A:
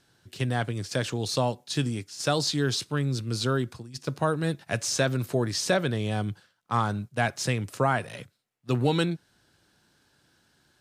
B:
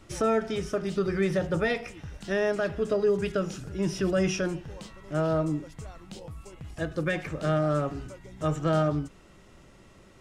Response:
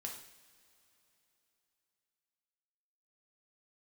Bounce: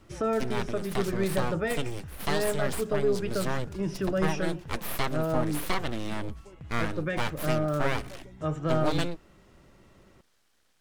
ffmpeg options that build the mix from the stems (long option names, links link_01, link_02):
-filter_complex "[0:a]aeval=exprs='abs(val(0))':channel_layout=same,volume=-2.5dB[link_01];[1:a]highshelf=frequency=3800:gain=-9,volume=-2.5dB[link_02];[link_01][link_02]amix=inputs=2:normalize=0"